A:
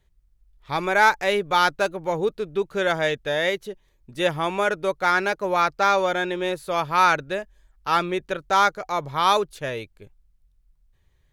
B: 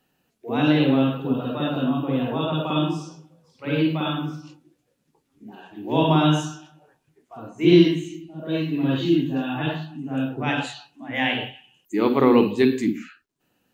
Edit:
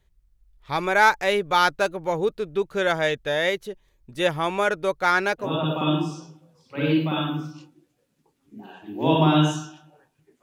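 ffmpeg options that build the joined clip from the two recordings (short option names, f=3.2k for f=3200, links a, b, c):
-filter_complex "[0:a]apad=whole_dur=10.42,atrim=end=10.42,atrim=end=5.54,asetpts=PTS-STARTPTS[a];[1:a]atrim=start=2.27:end=7.31,asetpts=PTS-STARTPTS[b];[a][b]acrossfade=d=0.16:c1=tri:c2=tri"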